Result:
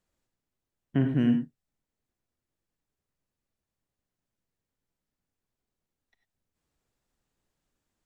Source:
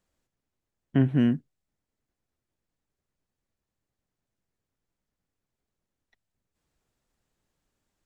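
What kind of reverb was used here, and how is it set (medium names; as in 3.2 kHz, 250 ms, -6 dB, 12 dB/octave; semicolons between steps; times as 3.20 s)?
gated-style reverb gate 120 ms rising, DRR 6.5 dB; trim -3 dB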